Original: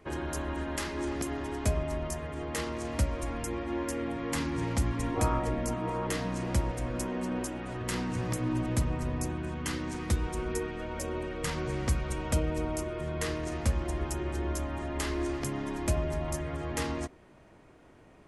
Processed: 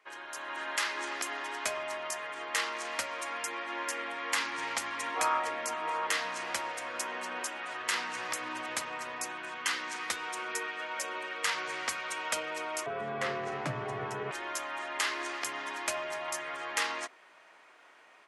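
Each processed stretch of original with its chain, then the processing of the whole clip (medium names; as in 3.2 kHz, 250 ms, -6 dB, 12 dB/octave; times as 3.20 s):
12.86–14.31 s: tilt EQ -4.5 dB/octave + frequency shift +64 Hz
whole clip: high-pass 1.2 kHz 12 dB/octave; treble shelf 7 kHz -11.5 dB; level rider gain up to 9 dB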